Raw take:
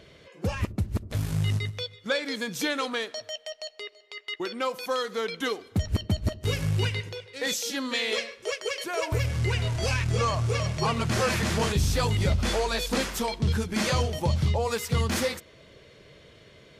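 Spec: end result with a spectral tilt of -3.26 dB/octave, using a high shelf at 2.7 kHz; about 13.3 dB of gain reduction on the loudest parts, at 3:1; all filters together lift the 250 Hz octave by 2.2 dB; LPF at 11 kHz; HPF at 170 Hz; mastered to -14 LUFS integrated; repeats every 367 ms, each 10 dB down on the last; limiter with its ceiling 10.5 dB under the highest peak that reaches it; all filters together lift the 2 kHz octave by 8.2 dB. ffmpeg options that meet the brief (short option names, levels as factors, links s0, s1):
-af "highpass=170,lowpass=11000,equalizer=f=250:t=o:g=4.5,equalizer=f=2000:t=o:g=8,highshelf=f=2700:g=4.5,acompressor=threshold=0.0141:ratio=3,alimiter=level_in=2.24:limit=0.0631:level=0:latency=1,volume=0.447,aecho=1:1:367|734|1101|1468:0.316|0.101|0.0324|0.0104,volume=20"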